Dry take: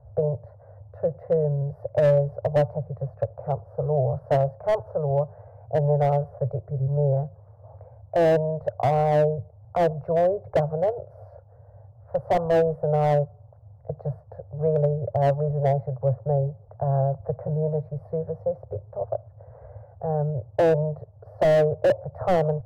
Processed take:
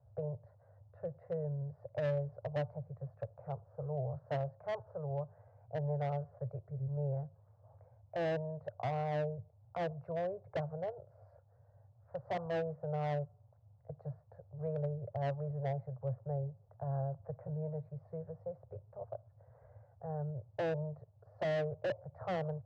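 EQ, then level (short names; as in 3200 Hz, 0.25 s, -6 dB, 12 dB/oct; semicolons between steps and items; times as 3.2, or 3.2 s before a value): Bessel high-pass 160 Hz, order 2; air absorption 150 m; bell 490 Hz -11 dB 2.9 oct; -5.0 dB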